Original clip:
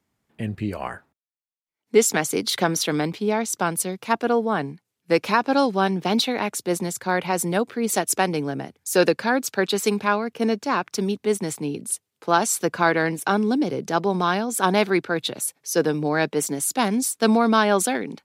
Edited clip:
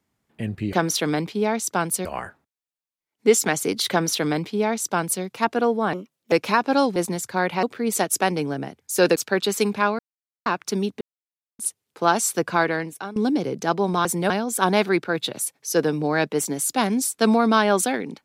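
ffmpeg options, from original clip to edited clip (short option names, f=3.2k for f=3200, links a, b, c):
-filter_complex "[0:a]asplit=15[a][b][c][d][e][f][g][h][i][j][k][l][m][n][o];[a]atrim=end=0.732[p];[b]atrim=start=2.588:end=3.912[q];[c]atrim=start=0.728:end=4.614[r];[d]atrim=start=4.61:end=5.12,asetpts=PTS-STARTPTS,asetrate=57771,aresample=44100[s];[e]atrim=start=5.116:end=5.762[t];[f]atrim=start=6.678:end=7.352[u];[g]atrim=start=7.598:end=9.132[v];[h]atrim=start=9.418:end=10.25,asetpts=PTS-STARTPTS,afade=t=out:st=0.828:d=0.004:c=hsin[w];[i]atrim=start=10.25:end=10.72,asetpts=PTS-STARTPTS,volume=0[x];[j]atrim=start=10.72:end=11.27,asetpts=PTS-STARTPTS,afade=t=in:d=0.004:c=hsin,afade=t=out:st=0.546:d=0.004:c=hsin[y];[k]atrim=start=11.27:end=11.85,asetpts=PTS-STARTPTS,volume=0[z];[l]atrim=start=11.85:end=13.42,asetpts=PTS-STARTPTS,afade=t=in:d=0.004:c=hsin,afade=t=out:st=0.92:d=0.65:silence=0.112202[aa];[m]atrim=start=13.42:end=14.312,asetpts=PTS-STARTPTS,afade=t=in:d=0.004:c=hsin:silence=0.112202[ab];[n]atrim=start=7.348:end=7.602[ac];[o]atrim=start=14.308[ad];[p][q]acrossfade=d=0.004:c1=hsin:c2=hsin[ae];[ae][r]acrossfade=d=0.004:c1=hsin:c2=hsin[af];[af][s]acrossfade=d=0.004:c1=hsin:c2=hsin[ag];[ag][t]acrossfade=d=0.004:c1=hsin:c2=hsin[ah];[ah][u]acrossfade=d=0.004:c1=hsin:c2=hsin[ai];[ai][v]acrossfade=d=0.004:c1=hsin:c2=hsin[aj];[w][x][y][z][aa][ab]concat=n=6:v=0:a=1[ak];[aj][ak]acrossfade=d=0.004:c1=hsin:c2=hsin[al];[al][ac]acrossfade=d=0.004:c1=hsin:c2=hsin[am];[am][ad]acrossfade=d=0.004:c1=hsin:c2=hsin"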